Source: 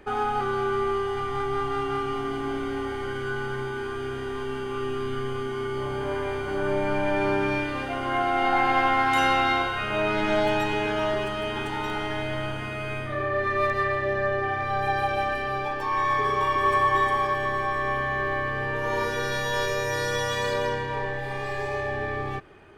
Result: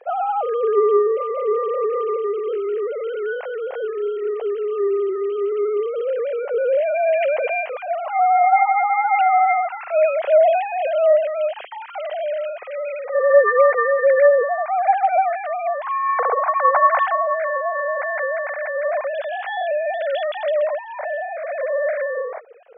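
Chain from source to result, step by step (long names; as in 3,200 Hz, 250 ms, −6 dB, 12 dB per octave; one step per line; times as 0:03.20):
three sine waves on the formant tracks
flat-topped bell 540 Hz +11.5 dB 1.2 octaves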